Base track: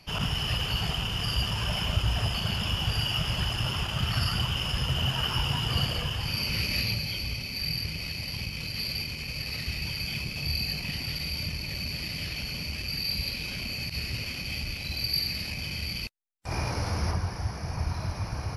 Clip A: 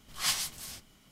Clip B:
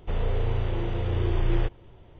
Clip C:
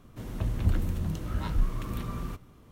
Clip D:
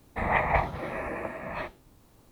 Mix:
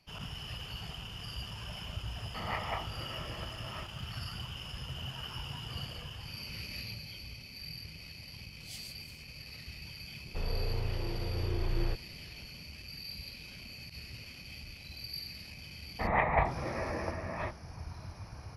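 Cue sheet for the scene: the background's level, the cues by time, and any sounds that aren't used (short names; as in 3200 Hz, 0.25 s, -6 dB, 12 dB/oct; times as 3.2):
base track -13.5 dB
2.18 add D -13 dB + small resonant body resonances 1300/2900 Hz, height 13 dB, ringing for 30 ms
8.45 add A -18 dB + elliptic band-stop 760–2200 Hz
10.27 add B -8 dB
15.83 add D -2 dB + air absorption 230 m
not used: C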